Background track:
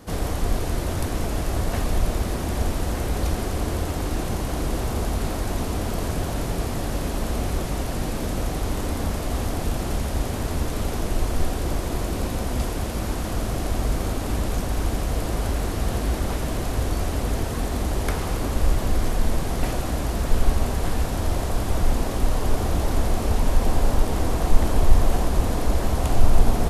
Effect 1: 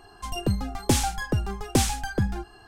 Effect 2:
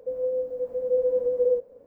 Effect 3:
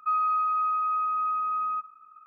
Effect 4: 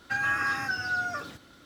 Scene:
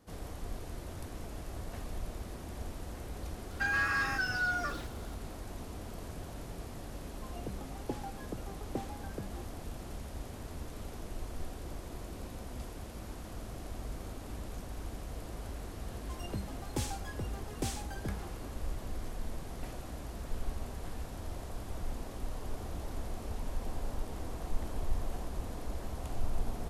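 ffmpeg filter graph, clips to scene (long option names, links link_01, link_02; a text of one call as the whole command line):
ffmpeg -i bed.wav -i cue0.wav -i cue1.wav -i cue2.wav -i cue3.wav -filter_complex "[1:a]asplit=2[link_01][link_02];[0:a]volume=-17.5dB[link_03];[4:a]asoftclip=type=tanh:threshold=-22.5dB[link_04];[link_01]bandpass=frequency=480:width_type=q:width=0.8:csg=0[link_05];[link_04]atrim=end=1.65,asetpts=PTS-STARTPTS,volume=-1.5dB,afade=type=in:duration=0.004:curve=hsin,afade=type=out:start_time=1.646:duration=0.004:curve=hsin,adelay=3500[link_06];[link_05]atrim=end=2.67,asetpts=PTS-STARTPTS,volume=-12.5dB,afade=type=in:duration=0.004:curve=hsin,afade=type=out:start_time=2.666:duration=0.004:curve=hsin,adelay=7000[link_07];[link_02]atrim=end=2.67,asetpts=PTS-STARTPTS,volume=-14.5dB,afade=type=in:duration=0.004:curve=hsin,afade=type=out:start_time=2.666:duration=0.004:curve=hsin,adelay=15870[link_08];[link_03][link_06][link_07][link_08]amix=inputs=4:normalize=0" out.wav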